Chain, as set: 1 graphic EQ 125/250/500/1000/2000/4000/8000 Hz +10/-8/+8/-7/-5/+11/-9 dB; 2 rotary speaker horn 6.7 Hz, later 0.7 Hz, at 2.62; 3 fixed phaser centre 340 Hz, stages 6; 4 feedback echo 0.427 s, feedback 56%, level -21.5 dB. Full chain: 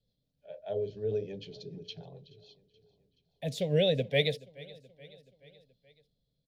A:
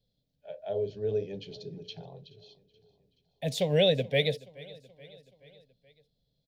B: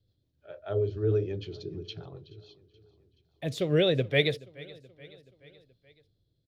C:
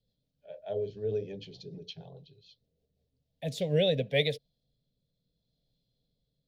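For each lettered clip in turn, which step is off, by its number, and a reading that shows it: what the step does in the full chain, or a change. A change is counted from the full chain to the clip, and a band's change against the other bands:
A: 2, 8 kHz band +3.5 dB; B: 3, 8 kHz band -3.5 dB; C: 4, echo-to-direct -20.0 dB to none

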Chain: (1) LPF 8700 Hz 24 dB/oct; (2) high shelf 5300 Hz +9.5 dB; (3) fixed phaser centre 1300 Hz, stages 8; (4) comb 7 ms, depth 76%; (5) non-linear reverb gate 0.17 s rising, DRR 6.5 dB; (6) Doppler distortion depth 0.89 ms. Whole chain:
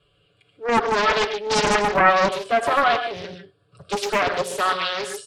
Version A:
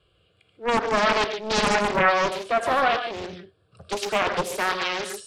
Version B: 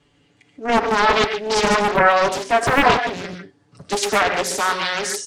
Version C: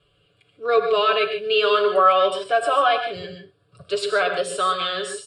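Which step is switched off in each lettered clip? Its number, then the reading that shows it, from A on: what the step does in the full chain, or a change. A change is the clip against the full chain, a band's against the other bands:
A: 4, momentary loudness spread change -2 LU; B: 3, 8 kHz band +3.5 dB; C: 6, 250 Hz band -7.5 dB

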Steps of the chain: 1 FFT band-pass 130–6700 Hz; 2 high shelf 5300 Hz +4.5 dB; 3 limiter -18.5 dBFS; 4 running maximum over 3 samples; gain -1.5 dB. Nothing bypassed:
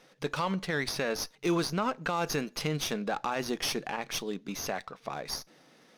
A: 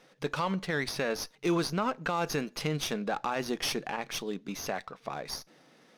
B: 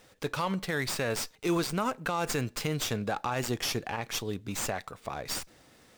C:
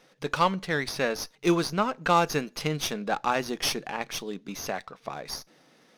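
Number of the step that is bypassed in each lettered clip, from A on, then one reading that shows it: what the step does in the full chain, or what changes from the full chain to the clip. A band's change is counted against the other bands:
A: 2, 8 kHz band -2.0 dB; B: 1, 125 Hz band +2.5 dB; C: 3, mean gain reduction 1.5 dB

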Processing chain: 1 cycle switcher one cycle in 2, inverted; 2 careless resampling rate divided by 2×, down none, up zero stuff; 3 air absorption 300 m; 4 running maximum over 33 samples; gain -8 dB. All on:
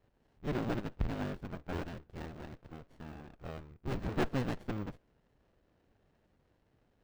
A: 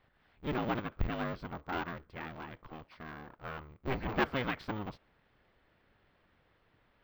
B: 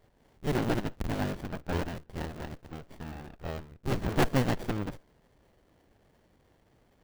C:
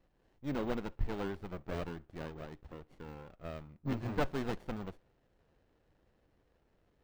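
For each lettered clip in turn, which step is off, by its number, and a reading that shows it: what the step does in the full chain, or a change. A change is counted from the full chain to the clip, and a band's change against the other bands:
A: 4, crest factor change +2.0 dB; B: 3, 8 kHz band +6.0 dB; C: 1, momentary loudness spread change -1 LU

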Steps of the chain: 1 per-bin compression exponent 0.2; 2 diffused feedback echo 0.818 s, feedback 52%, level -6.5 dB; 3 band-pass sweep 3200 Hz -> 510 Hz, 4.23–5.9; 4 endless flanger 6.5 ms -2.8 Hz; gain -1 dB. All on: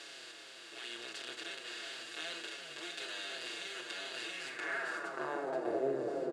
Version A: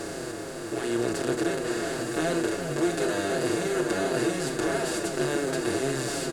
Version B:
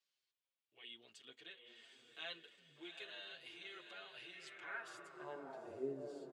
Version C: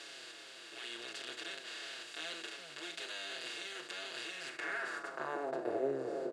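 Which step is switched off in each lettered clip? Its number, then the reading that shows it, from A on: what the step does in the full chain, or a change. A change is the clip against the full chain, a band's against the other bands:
3, 125 Hz band +13.5 dB; 1, 8 kHz band -6.0 dB; 2, loudness change -1.0 LU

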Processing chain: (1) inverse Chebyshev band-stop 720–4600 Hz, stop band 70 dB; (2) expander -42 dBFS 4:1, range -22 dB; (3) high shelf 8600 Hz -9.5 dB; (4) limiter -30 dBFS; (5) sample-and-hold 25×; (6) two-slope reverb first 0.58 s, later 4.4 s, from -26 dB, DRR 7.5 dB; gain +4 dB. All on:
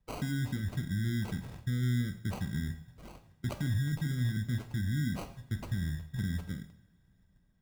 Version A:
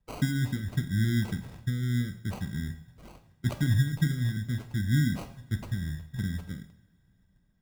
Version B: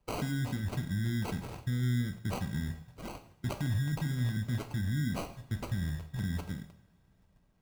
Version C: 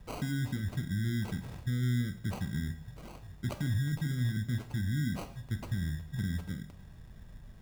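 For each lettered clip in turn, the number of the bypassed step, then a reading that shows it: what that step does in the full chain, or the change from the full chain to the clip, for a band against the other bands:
4, mean gain reduction 2.0 dB; 3, 1 kHz band +5.0 dB; 2, momentary loudness spread change +8 LU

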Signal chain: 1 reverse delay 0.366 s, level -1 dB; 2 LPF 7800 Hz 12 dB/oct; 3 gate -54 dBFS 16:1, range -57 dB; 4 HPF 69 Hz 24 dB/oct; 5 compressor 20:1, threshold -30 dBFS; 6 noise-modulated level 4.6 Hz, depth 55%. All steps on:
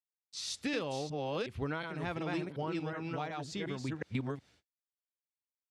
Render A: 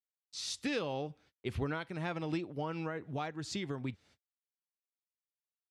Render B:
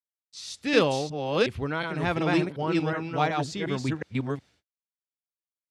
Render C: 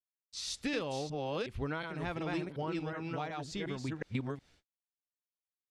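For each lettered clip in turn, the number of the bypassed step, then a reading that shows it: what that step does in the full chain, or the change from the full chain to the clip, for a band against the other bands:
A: 1, momentary loudness spread change +4 LU; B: 5, mean gain reduction 8.5 dB; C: 4, crest factor change +1.5 dB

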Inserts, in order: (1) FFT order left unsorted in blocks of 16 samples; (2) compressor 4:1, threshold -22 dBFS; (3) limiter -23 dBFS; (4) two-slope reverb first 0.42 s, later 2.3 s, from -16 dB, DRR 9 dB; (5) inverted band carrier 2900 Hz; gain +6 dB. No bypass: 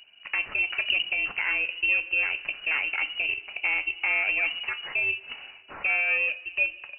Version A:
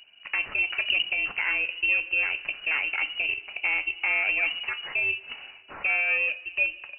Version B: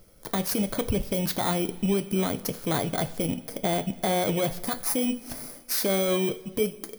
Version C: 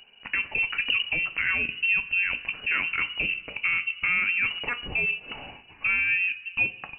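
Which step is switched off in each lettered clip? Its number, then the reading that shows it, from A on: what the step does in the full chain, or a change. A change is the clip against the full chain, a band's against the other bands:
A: 2, mean gain reduction 2.0 dB; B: 5, 2 kHz band -31.5 dB; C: 1, 250 Hz band +5.5 dB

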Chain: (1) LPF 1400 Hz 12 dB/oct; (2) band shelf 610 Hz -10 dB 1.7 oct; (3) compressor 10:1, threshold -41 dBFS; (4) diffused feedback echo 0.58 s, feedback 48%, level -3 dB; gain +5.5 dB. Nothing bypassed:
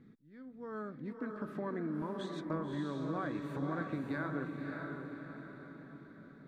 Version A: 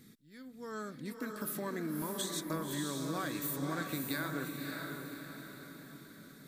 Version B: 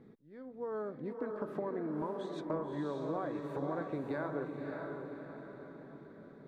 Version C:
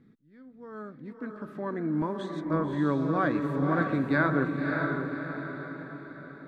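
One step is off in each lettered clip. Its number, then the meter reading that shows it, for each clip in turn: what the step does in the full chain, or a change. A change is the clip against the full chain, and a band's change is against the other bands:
1, crest factor change +2.0 dB; 2, 500 Hz band +8.0 dB; 3, mean gain reduction 5.0 dB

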